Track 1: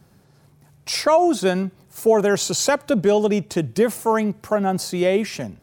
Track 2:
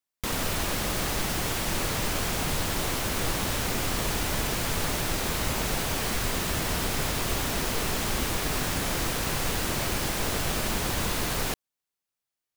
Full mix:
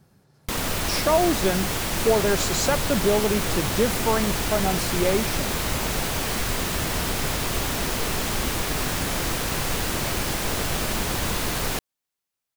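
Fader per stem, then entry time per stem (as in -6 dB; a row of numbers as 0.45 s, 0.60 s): -4.5 dB, +2.5 dB; 0.00 s, 0.25 s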